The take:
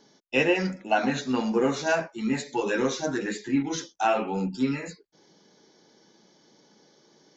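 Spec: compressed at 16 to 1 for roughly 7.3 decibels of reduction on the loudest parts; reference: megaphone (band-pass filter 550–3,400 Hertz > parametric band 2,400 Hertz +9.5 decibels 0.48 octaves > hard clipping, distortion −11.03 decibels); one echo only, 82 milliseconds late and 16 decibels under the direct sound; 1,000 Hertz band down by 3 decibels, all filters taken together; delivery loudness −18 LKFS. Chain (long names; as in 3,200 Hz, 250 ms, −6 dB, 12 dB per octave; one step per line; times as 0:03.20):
parametric band 1,000 Hz −3.5 dB
downward compressor 16 to 1, threshold −26 dBFS
band-pass filter 550–3,400 Hz
parametric band 2,400 Hz +9.5 dB 0.48 octaves
single-tap delay 82 ms −16 dB
hard clipping −27.5 dBFS
level +17.5 dB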